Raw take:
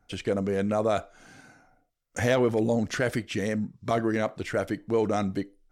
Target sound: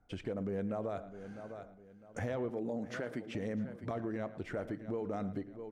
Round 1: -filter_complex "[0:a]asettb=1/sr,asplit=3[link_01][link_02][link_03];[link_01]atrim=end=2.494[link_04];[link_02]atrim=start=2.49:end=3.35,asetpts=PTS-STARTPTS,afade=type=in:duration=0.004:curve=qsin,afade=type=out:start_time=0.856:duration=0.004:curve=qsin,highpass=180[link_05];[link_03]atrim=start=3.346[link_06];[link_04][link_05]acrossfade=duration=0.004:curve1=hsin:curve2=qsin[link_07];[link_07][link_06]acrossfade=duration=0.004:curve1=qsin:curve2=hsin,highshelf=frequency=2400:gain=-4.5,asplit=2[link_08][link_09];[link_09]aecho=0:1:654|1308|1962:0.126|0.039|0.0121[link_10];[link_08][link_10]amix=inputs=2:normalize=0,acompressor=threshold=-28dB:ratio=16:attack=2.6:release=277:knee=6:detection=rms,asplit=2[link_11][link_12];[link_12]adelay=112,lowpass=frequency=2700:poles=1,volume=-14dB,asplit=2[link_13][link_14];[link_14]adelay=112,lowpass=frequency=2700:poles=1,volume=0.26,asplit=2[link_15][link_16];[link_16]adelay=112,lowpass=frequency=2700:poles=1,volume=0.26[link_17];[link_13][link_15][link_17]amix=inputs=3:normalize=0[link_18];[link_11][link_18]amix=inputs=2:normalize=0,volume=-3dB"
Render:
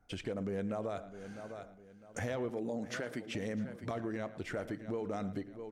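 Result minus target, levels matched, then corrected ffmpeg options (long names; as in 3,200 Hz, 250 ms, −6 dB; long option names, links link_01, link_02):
4,000 Hz band +6.0 dB
-filter_complex "[0:a]asettb=1/sr,asplit=3[link_01][link_02][link_03];[link_01]atrim=end=2.494[link_04];[link_02]atrim=start=2.49:end=3.35,asetpts=PTS-STARTPTS,afade=type=in:duration=0.004:curve=qsin,afade=type=out:start_time=0.856:duration=0.004:curve=qsin,highpass=180[link_05];[link_03]atrim=start=3.346[link_06];[link_04][link_05]acrossfade=duration=0.004:curve1=hsin:curve2=qsin[link_07];[link_07][link_06]acrossfade=duration=0.004:curve1=qsin:curve2=hsin,highshelf=frequency=2400:gain=-14.5,asplit=2[link_08][link_09];[link_09]aecho=0:1:654|1308|1962:0.126|0.039|0.0121[link_10];[link_08][link_10]amix=inputs=2:normalize=0,acompressor=threshold=-28dB:ratio=16:attack=2.6:release=277:knee=6:detection=rms,asplit=2[link_11][link_12];[link_12]adelay=112,lowpass=frequency=2700:poles=1,volume=-14dB,asplit=2[link_13][link_14];[link_14]adelay=112,lowpass=frequency=2700:poles=1,volume=0.26,asplit=2[link_15][link_16];[link_16]adelay=112,lowpass=frequency=2700:poles=1,volume=0.26[link_17];[link_13][link_15][link_17]amix=inputs=3:normalize=0[link_18];[link_11][link_18]amix=inputs=2:normalize=0,volume=-3dB"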